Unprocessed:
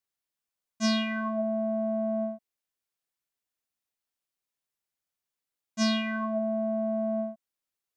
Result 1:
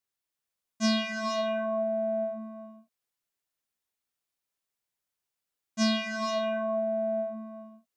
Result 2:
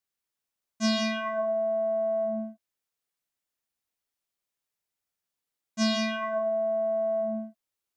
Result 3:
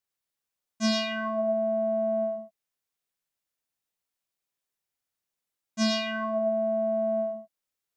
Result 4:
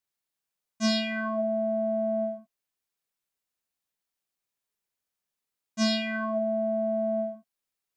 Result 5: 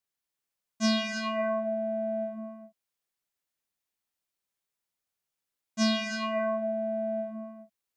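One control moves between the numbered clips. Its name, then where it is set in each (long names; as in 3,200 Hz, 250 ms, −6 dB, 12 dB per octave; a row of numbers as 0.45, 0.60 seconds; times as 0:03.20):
reverb whose tail is shaped and stops, gate: 510, 200, 130, 90, 350 milliseconds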